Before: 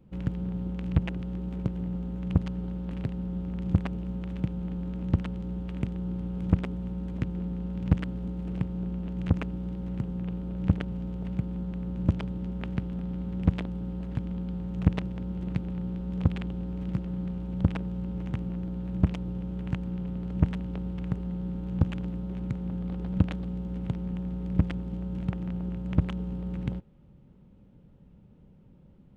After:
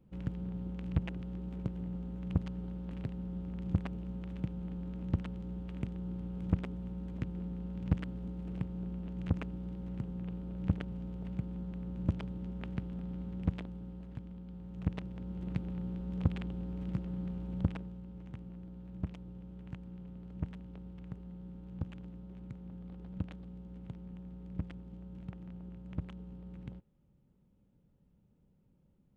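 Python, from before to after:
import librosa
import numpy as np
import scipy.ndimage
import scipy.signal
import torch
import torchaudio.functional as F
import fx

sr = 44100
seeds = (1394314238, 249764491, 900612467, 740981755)

y = fx.gain(x, sr, db=fx.line((13.22, -7.0), (14.41, -14.0), (15.56, -5.5), (17.58, -5.5), (18.02, -14.0)))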